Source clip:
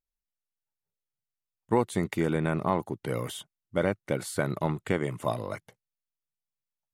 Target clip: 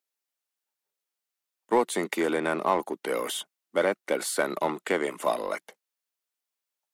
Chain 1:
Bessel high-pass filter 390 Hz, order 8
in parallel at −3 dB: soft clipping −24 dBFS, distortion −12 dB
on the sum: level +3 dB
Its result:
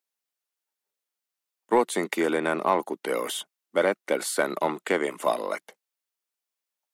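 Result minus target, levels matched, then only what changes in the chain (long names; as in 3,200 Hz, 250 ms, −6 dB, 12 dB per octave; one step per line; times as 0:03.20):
soft clipping: distortion −7 dB
change: soft clipping −34 dBFS, distortion −4 dB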